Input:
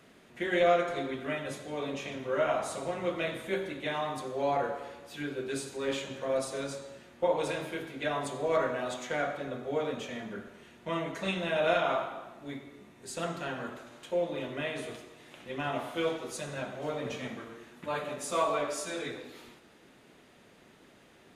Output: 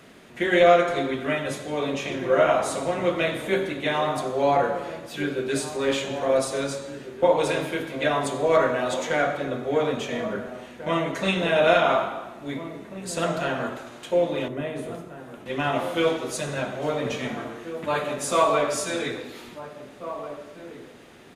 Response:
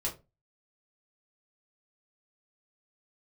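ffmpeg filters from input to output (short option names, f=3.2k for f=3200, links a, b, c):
-filter_complex "[0:a]asettb=1/sr,asplit=3[a][b][c];[a]atrim=end=14.484[d];[b]atrim=start=14.48:end=15.46,asetpts=PTS-STARTPTS,afade=t=in:d=0.004:c=qsin,afade=t=out:st=0.976:d=0.004:c=qsin,equalizer=f=3.4k:w=0.31:g=-12.5[e];[c]atrim=start=15.456[f];[d][e]acrossfade=d=0.004:c1=hsin:c2=qsin[g];[g][f]acrossfade=d=0.004:c1=qsin:c2=hsin,asplit=2[h][i];[i]adelay=1691,volume=-11dB,highshelf=f=4k:g=-38[j];[h][j]amix=inputs=2:normalize=0,volume=8.5dB"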